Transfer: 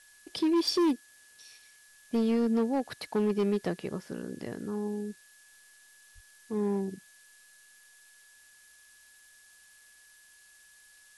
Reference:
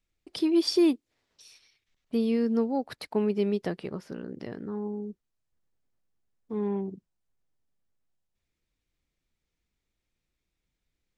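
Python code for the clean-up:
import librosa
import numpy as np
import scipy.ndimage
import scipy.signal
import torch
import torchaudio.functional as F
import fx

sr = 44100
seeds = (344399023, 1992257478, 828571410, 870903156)

y = fx.fix_declip(x, sr, threshold_db=-22.0)
y = fx.notch(y, sr, hz=1700.0, q=30.0)
y = fx.highpass(y, sr, hz=140.0, slope=24, at=(6.14, 6.26), fade=0.02)
y = fx.noise_reduce(y, sr, print_start_s=8.12, print_end_s=8.62, reduce_db=24.0)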